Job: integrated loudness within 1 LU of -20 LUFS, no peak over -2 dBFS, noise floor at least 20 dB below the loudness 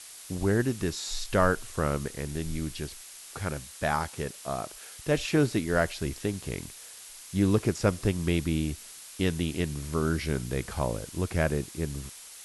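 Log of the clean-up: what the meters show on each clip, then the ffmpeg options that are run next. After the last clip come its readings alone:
noise floor -47 dBFS; noise floor target -50 dBFS; loudness -30.0 LUFS; peak -10.5 dBFS; loudness target -20.0 LUFS
-> -af "afftdn=nr=6:nf=-47"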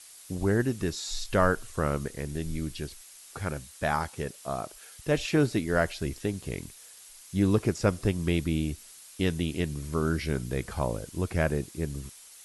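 noise floor -51 dBFS; loudness -30.0 LUFS; peak -10.5 dBFS; loudness target -20.0 LUFS
-> -af "volume=10dB,alimiter=limit=-2dB:level=0:latency=1"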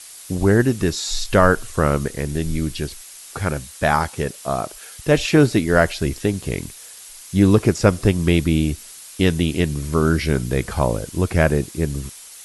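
loudness -20.0 LUFS; peak -2.0 dBFS; noise floor -41 dBFS

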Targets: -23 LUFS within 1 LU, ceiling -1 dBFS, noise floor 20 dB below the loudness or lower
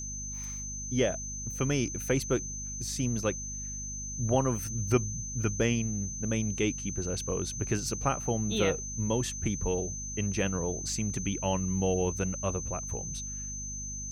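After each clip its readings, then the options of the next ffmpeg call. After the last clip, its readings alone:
hum 50 Hz; harmonics up to 250 Hz; hum level -40 dBFS; steady tone 6200 Hz; tone level -37 dBFS; loudness -31.0 LUFS; peak -12.0 dBFS; loudness target -23.0 LUFS
-> -af "bandreject=f=50:t=h:w=6,bandreject=f=100:t=h:w=6,bandreject=f=150:t=h:w=6,bandreject=f=200:t=h:w=6,bandreject=f=250:t=h:w=6"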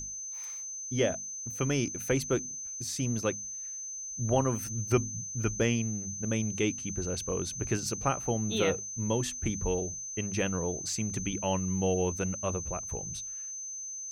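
hum none; steady tone 6200 Hz; tone level -37 dBFS
-> -af "bandreject=f=6.2k:w=30"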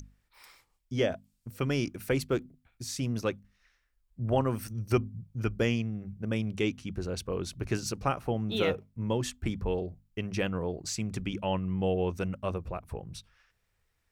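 steady tone none; loudness -32.5 LUFS; peak -13.5 dBFS; loudness target -23.0 LUFS
-> -af "volume=9.5dB"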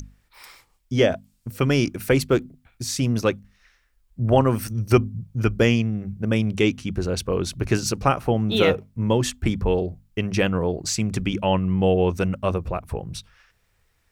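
loudness -23.0 LUFS; peak -4.0 dBFS; noise floor -66 dBFS

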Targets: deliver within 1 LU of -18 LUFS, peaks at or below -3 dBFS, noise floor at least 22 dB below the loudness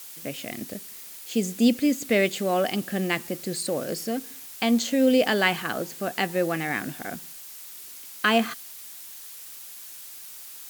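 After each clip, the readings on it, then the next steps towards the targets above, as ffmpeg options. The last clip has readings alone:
noise floor -42 dBFS; noise floor target -48 dBFS; loudness -25.5 LUFS; peak -7.0 dBFS; loudness target -18.0 LUFS
-> -af "afftdn=nr=6:nf=-42"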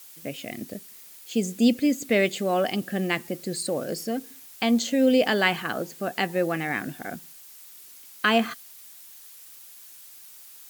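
noise floor -47 dBFS; noise floor target -48 dBFS
-> -af "afftdn=nr=6:nf=-47"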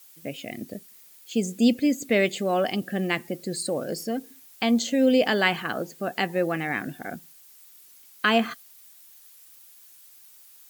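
noise floor -52 dBFS; loudness -25.5 LUFS; peak -6.5 dBFS; loudness target -18.0 LUFS
-> -af "volume=7.5dB,alimiter=limit=-3dB:level=0:latency=1"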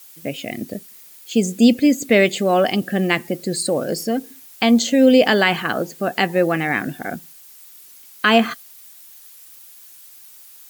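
loudness -18.0 LUFS; peak -3.0 dBFS; noise floor -44 dBFS

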